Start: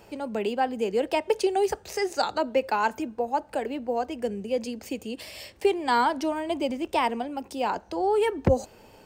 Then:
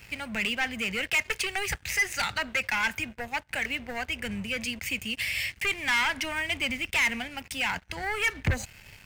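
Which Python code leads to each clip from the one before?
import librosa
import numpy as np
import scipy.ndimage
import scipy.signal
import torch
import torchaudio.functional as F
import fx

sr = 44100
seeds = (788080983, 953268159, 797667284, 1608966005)

y = 10.0 ** (-18.5 / 20.0) * np.tanh(x / 10.0 ** (-18.5 / 20.0))
y = fx.curve_eq(y, sr, hz=(140.0, 360.0, 1100.0, 2100.0, 4300.0, 12000.0), db=(0, -26, -14, 8, -7, -3))
y = fx.leveller(y, sr, passes=3)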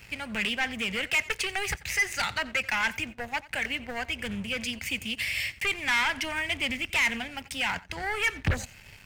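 y = x + 10.0 ** (-20.0 / 20.0) * np.pad(x, (int(89 * sr / 1000.0), 0))[:len(x)]
y = fx.doppler_dist(y, sr, depth_ms=0.64)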